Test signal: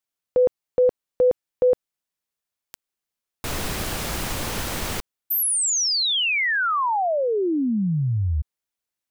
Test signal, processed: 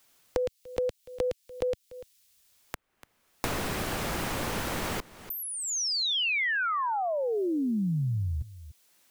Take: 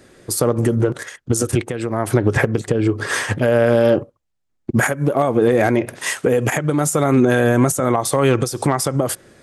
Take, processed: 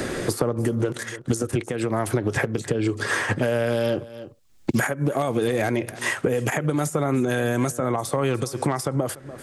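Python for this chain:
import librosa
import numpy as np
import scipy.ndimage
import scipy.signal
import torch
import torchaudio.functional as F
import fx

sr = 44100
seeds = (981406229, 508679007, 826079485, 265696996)

p1 = x + fx.echo_single(x, sr, ms=292, db=-23.0, dry=0)
p2 = fx.band_squash(p1, sr, depth_pct=100)
y = p2 * 10.0 ** (-7.5 / 20.0)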